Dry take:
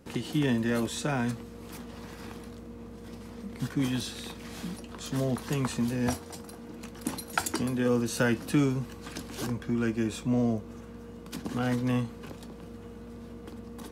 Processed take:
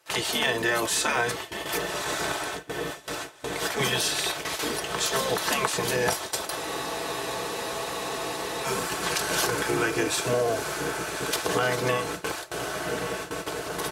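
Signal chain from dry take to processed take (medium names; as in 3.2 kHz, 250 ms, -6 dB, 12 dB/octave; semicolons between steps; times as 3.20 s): in parallel at -4 dB: sine folder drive 8 dB, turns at -9.5 dBFS; on the sum: comb 4.6 ms, depth 60%; on a send: echo that smears into a reverb 1218 ms, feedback 73%, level -11.5 dB; on the sum: gate with hold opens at -18 dBFS; spectral gate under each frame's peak -10 dB weak; high-pass 280 Hz 6 dB/octave; compression, threshold -25 dBFS, peak gain reduction 7 dB; spectral freeze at 6.60 s, 2.06 s; tape noise reduction on one side only encoder only; trim +4 dB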